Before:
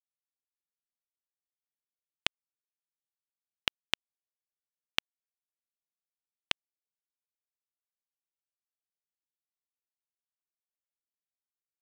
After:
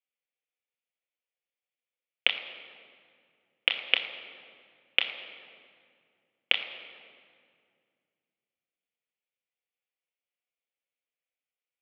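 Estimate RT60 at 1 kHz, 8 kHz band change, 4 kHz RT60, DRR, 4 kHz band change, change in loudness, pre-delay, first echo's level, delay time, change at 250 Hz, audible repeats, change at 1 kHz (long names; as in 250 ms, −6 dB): 2.1 s, below −20 dB, 1.4 s, 2.0 dB, +6.5 dB, +6.5 dB, 3 ms, no echo audible, no echo audible, −3.0 dB, no echo audible, +0.5 dB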